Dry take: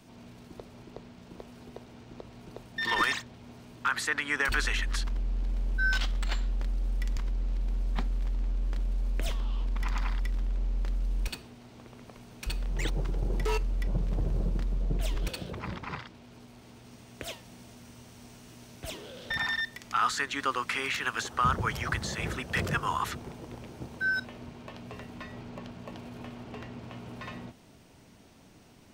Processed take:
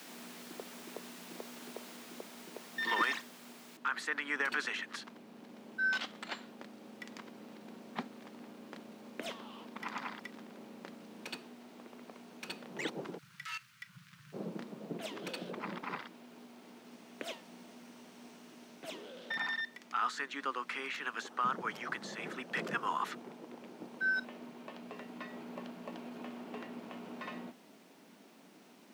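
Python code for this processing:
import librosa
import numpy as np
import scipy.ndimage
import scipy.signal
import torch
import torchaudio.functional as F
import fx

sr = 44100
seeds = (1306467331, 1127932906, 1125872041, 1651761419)

y = fx.noise_floor_step(x, sr, seeds[0], at_s=3.77, before_db=-45, after_db=-62, tilt_db=0.0)
y = fx.ellip_bandstop(y, sr, low_hz=130.0, high_hz=1400.0, order=3, stop_db=40, at=(13.17, 14.32), fade=0.02)
y = scipy.signal.sosfilt(scipy.signal.butter(6, 190.0, 'highpass', fs=sr, output='sos'), y)
y = fx.high_shelf(y, sr, hz=5500.0, db=-11.0)
y = fx.rider(y, sr, range_db=3, speed_s=2.0)
y = F.gain(torch.from_numpy(y), -4.0).numpy()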